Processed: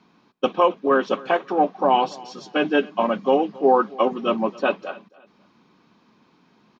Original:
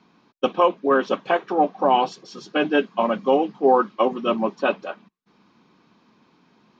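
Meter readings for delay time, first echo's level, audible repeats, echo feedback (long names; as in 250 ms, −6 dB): 273 ms, −22.0 dB, 2, 30%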